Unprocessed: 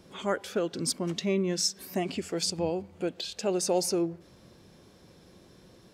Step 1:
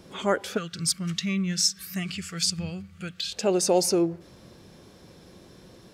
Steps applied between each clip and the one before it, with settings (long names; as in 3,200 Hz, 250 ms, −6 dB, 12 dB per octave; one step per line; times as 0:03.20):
gain on a spectral selection 0:00.57–0:03.31, 210–1,100 Hz −18 dB
level +5 dB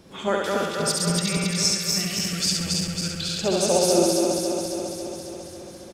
feedback delay that plays each chunk backwards 137 ms, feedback 81%, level −3 dB
on a send: repeating echo 69 ms, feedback 45%, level −3 dB
on the sum: level −1 dB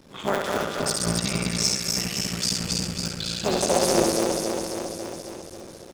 sub-harmonics by changed cycles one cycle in 3, muted